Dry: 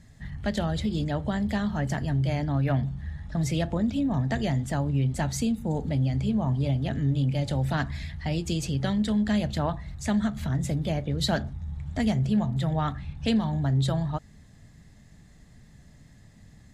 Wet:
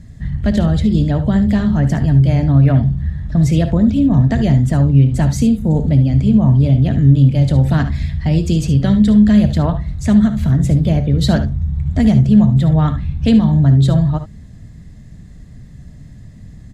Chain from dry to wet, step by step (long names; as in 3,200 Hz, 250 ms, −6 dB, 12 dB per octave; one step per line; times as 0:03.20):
low-shelf EQ 370 Hz +12 dB
notch filter 830 Hz, Q 12
on a send: ambience of single reflections 57 ms −14.5 dB, 72 ms −12.5 dB
on the sum: level +4.5 dB